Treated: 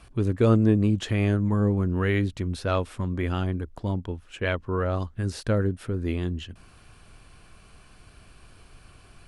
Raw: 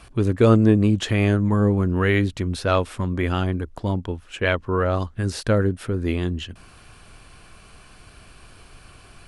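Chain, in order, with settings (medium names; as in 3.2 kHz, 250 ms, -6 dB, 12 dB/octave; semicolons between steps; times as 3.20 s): bass shelf 330 Hz +3.5 dB; trim -6.5 dB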